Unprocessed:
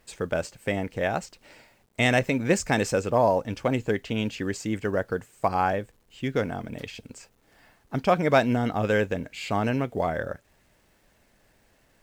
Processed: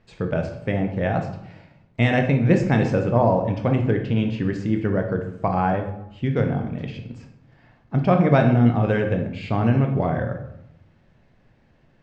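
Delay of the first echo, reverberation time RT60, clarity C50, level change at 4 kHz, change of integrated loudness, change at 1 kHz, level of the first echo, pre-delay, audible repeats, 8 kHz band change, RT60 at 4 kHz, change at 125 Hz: none, 0.80 s, 7.5 dB, -3.5 dB, +4.5 dB, +1.5 dB, none, 17 ms, none, under -10 dB, 0.55 s, +11.0 dB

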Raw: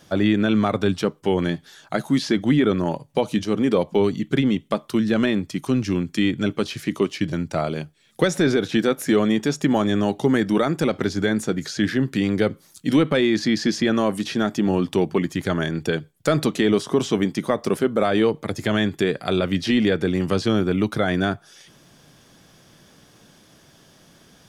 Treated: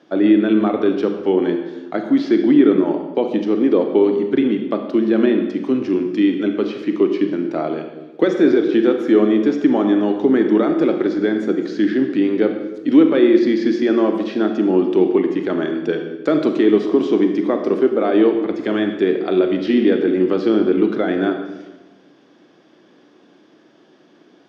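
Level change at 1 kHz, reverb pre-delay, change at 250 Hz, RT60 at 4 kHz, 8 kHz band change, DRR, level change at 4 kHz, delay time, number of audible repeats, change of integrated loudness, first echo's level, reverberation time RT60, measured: +0.5 dB, 29 ms, +5.5 dB, 0.95 s, under -15 dB, 5.0 dB, -5.0 dB, none, none, +5.0 dB, none, 1.2 s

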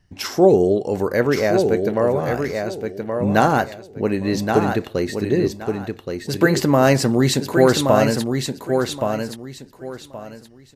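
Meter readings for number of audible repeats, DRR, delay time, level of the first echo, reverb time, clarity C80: 3, none, 1.123 s, -5.5 dB, none, none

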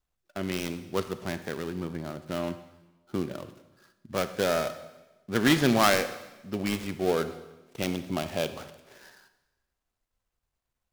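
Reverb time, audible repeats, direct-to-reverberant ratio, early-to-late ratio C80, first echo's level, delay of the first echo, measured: 1.1 s, none, 11.0 dB, 14.0 dB, none, none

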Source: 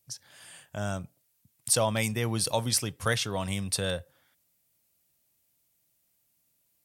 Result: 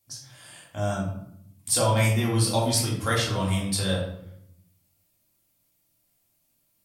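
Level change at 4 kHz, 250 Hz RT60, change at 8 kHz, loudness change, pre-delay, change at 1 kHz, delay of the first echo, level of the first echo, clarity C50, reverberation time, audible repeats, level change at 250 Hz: +3.0 dB, 1.1 s, +2.0 dB, +4.0 dB, 3 ms, +5.0 dB, none, none, 4.0 dB, 0.75 s, none, +6.0 dB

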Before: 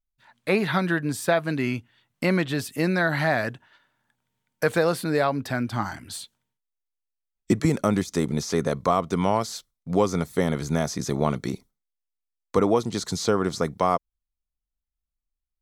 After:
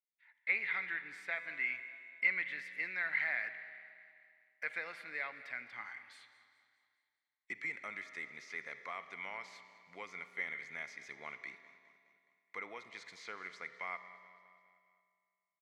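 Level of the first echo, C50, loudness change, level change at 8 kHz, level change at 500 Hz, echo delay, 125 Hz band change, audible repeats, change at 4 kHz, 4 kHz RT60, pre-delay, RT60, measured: -18.5 dB, 10.0 dB, -14.5 dB, -28.0 dB, -29.5 dB, 0.208 s, -40.0 dB, 4, -19.5 dB, 2.2 s, 40 ms, 2.2 s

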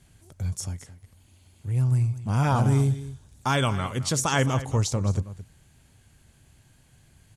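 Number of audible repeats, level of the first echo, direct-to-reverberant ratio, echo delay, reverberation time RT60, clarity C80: 1, -15.0 dB, none, 0.217 s, none, none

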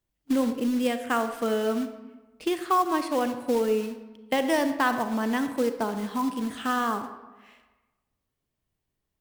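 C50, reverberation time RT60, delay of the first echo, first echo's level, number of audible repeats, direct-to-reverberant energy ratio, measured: 9.5 dB, 1.2 s, none, none, none, 8.5 dB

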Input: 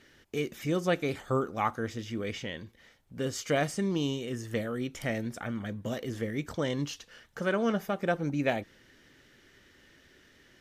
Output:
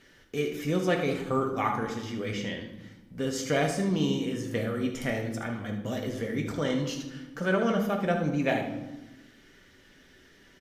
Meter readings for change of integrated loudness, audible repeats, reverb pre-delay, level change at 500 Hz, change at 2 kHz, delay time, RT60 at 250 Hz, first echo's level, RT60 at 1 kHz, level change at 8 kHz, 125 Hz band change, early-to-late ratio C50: +2.5 dB, 1, 4 ms, +2.5 dB, +2.5 dB, 75 ms, 1.6 s, -10.0 dB, 0.95 s, +2.0 dB, +2.5 dB, 6.0 dB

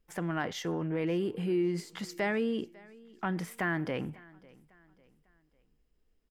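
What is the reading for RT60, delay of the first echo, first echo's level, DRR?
none, 0.549 s, -23.5 dB, none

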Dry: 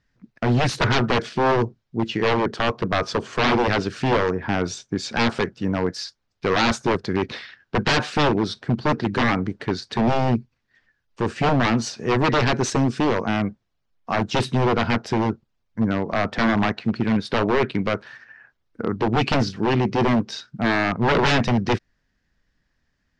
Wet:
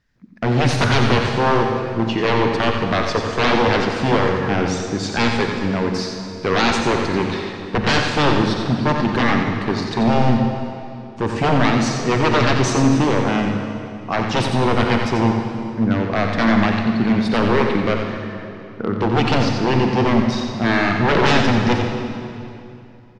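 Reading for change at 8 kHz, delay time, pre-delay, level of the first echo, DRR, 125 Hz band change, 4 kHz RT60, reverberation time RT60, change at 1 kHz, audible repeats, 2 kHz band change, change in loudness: +3.5 dB, 89 ms, 38 ms, -8.0 dB, 2.0 dB, +4.5 dB, 2.3 s, 2.7 s, +3.5 dB, 1, +3.5 dB, +3.5 dB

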